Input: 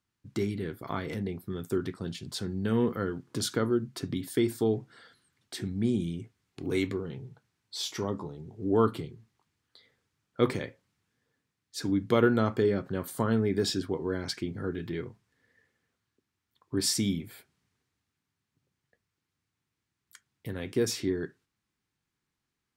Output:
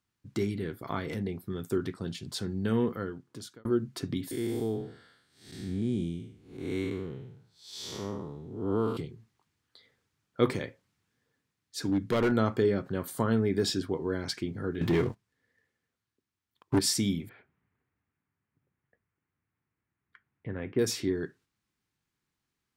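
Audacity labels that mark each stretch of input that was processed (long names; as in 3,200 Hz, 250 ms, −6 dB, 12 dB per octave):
2.690000	3.650000	fade out
4.310000	8.970000	spectrum smeared in time width 232 ms
10.500000	12.320000	hard clipping −21.5 dBFS
14.810000	16.790000	leveller curve on the samples passes 3
17.290000	20.790000	low-pass filter 2,300 Hz 24 dB per octave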